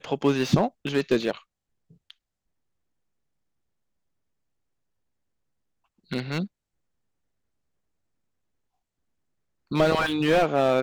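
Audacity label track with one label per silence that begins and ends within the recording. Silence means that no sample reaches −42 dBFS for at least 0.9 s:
2.110000	6.110000	silence
6.470000	9.710000	silence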